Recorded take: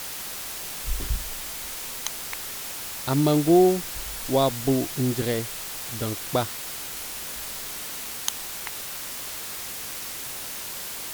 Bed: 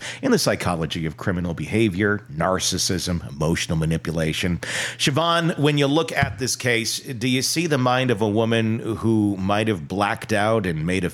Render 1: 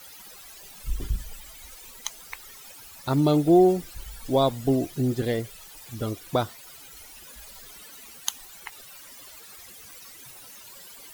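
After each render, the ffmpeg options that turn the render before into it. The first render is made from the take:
-af "afftdn=nr=16:nf=-35"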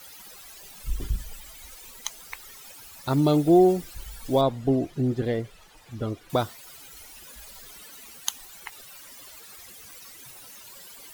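-filter_complex "[0:a]asettb=1/sr,asplit=3[s0][s1][s2];[s0]atrim=end=4.414[s3];[s1]atrim=start=4.41:end=6.3,asetpts=PTS-STARTPTS,afade=t=in:d=0.004:c=qsin,afade=t=out:st=1.886:d=0.004:c=qsin,aemphasis=mode=reproduction:type=75kf[s4];[s2]atrim=start=6.296[s5];[s3][s4]acrossfade=d=0.004:c1=hsin:c2=qsin[s6];[s6][s5]acrossfade=d=0.004:c1=qsin:c2=hsin"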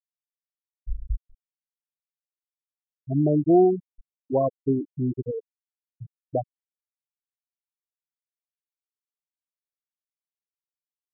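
-af "afftfilt=real='re*gte(hypot(re,im),0.316)':imag='im*gte(hypot(re,im),0.316)':win_size=1024:overlap=0.75"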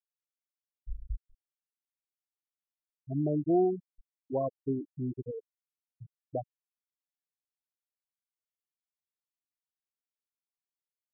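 -af "volume=0.376"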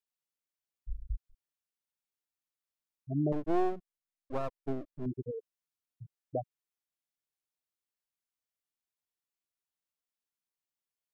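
-filter_complex "[0:a]asettb=1/sr,asplit=3[s0][s1][s2];[s0]atrim=end=3.324[s3];[s1]atrim=start=3.32:end=5.06,asetpts=PTS-STARTPTS,afade=t=in:d=0.004:c=qsin,afade=t=out:st=1.736:d=0.004:c=qsin,aeval=exprs='max(val(0),0)':c=same[s4];[s2]atrim=start=5.056[s5];[s3][s4]acrossfade=d=0.004:c1=hsin:c2=qsin[s6];[s6][s5]acrossfade=d=0.004:c1=qsin:c2=hsin"

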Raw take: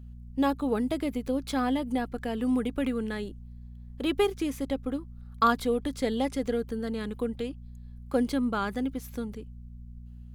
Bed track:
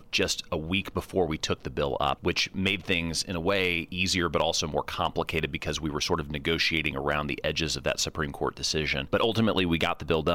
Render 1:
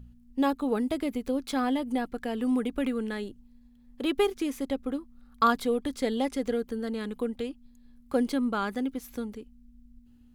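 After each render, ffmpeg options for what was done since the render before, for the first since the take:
-af "bandreject=f=60:t=h:w=4,bandreject=f=120:t=h:w=4,bandreject=f=180:t=h:w=4"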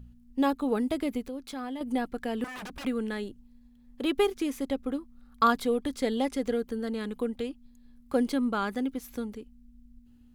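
-filter_complex "[0:a]asettb=1/sr,asplit=3[s0][s1][s2];[s0]atrim=end=1.224[s3];[s1]atrim=start=1.22:end=1.81,asetpts=PTS-STARTPTS,afade=t=in:d=0.004:c=qsin,afade=t=out:st=0.586:d=0.004:c=qsin,acompressor=threshold=0.00355:ratio=1.5:attack=3.2:release=140:knee=1:detection=peak[s4];[s2]atrim=start=1.806[s5];[s3][s4]acrossfade=d=0.004:c1=hsin:c2=qsin[s6];[s6][s5]acrossfade=d=0.004:c1=qsin:c2=hsin,asettb=1/sr,asplit=3[s7][s8][s9];[s7]atrim=end=2.444[s10];[s8]atrim=start=2.44:end=2.85,asetpts=PTS-STARTPTS,afade=t=in:d=0.004:c=qsin,afade=t=out:st=0.406:d=0.004:c=qsin,aeval=exprs='0.0168*(abs(mod(val(0)/0.0168+3,4)-2)-1)':c=same[s11];[s9]atrim=start=2.846[s12];[s10][s11]acrossfade=d=0.004:c1=hsin:c2=qsin[s13];[s13][s12]acrossfade=d=0.004:c1=qsin:c2=hsin"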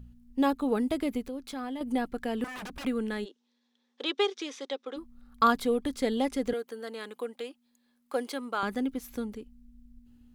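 -filter_complex "[0:a]asplit=3[s0][s1][s2];[s0]afade=t=out:st=3.24:d=0.02[s3];[s1]highpass=f=400:w=0.5412,highpass=f=400:w=1.3066,equalizer=f=670:t=q:w=4:g=-5,equalizer=f=3600:t=q:w=4:g=9,equalizer=f=5700:t=q:w=4:g=6,lowpass=f=6900:w=0.5412,lowpass=f=6900:w=1.3066,afade=t=in:st=3.24:d=0.02,afade=t=out:st=4.96:d=0.02[s4];[s2]afade=t=in:st=4.96:d=0.02[s5];[s3][s4][s5]amix=inputs=3:normalize=0,asettb=1/sr,asplit=3[s6][s7][s8];[s6]atrim=end=6.534[s9];[s7]atrim=start=6.53:end=8.63,asetpts=PTS-STARTPTS,afade=t=in:d=0.004:c=qsin,afade=t=out:st=2.096:d=0.004:c=qsin,highpass=490[s10];[s8]atrim=start=8.626[s11];[s9][s10]acrossfade=d=0.004:c1=hsin:c2=qsin[s12];[s12][s11]acrossfade=d=0.004:c1=qsin:c2=hsin"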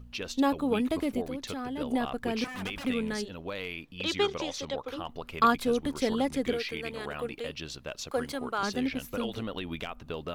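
-filter_complex "[1:a]volume=0.266[s0];[0:a][s0]amix=inputs=2:normalize=0"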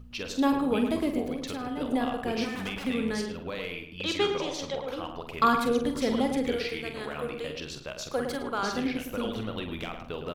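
-filter_complex "[0:a]asplit=2[s0][s1];[s1]adelay=46,volume=0.398[s2];[s0][s2]amix=inputs=2:normalize=0,asplit=2[s3][s4];[s4]adelay=108,lowpass=f=2100:p=1,volume=0.501,asplit=2[s5][s6];[s6]adelay=108,lowpass=f=2100:p=1,volume=0.28,asplit=2[s7][s8];[s8]adelay=108,lowpass=f=2100:p=1,volume=0.28,asplit=2[s9][s10];[s10]adelay=108,lowpass=f=2100:p=1,volume=0.28[s11];[s3][s5][s7][s9][s11]amix=inputs=5:normalize=0"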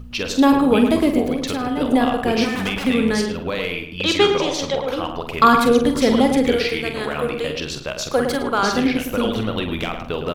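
-af "volume=3.55,alimiter=limit=0.708:level=0:latency=1"

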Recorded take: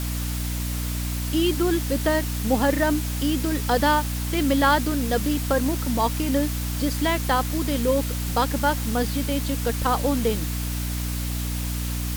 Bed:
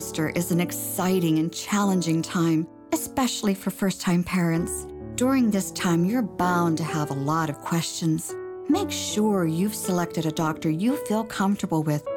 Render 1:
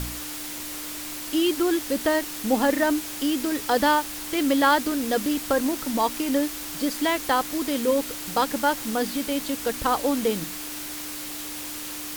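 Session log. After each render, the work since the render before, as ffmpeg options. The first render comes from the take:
-af "bandreject=f=60:t=h:w=4,bandreject=f=120:t=h:w=4,bandreject=f=180:t=h:w=4,bandreject=f=240:t=h:w=4"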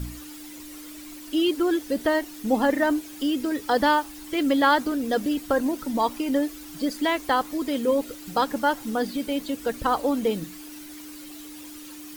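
-af "afftdn=nr=12:nf=-35"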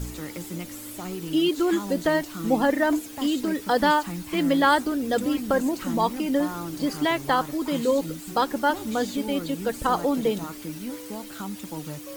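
-filter_complex "[1:a]volume=0.251[s0];[0:a][s0]amix=inputs=2:normalize=0"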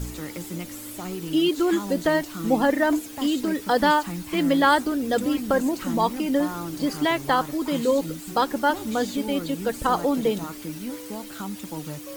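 -af "volume=1.12"

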